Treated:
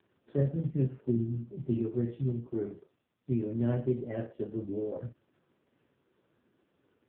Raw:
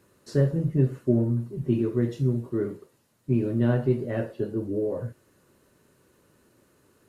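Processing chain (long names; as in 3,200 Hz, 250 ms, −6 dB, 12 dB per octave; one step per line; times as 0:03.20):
healed spectral selection 0:01.00–0:01.42, 390–1,100 Hz both
level −6 dB
AMR narrowband 4.75 kbit/s 8,000 Hz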